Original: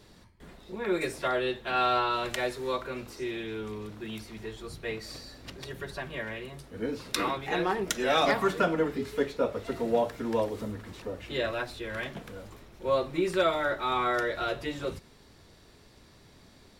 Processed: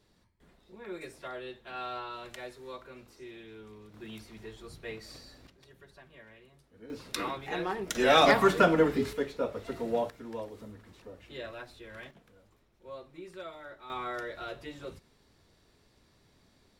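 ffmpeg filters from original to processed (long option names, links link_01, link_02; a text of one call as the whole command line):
ffmpeg -i in.wav -af "asetnsamples=nb_out_samples=441:pad=0,asendcmd='3.94 volume volume -6dB;5.47 volume volume -17.5dB;6.9 volume volume -5dB;7.95 volume volume 3.5dB;9.13 volume volume -4dB;10.1 volume volume -11dB;12.11 volume volume -18dB;13.9 volume volume -9dB',volume=-12.5dB" out.wav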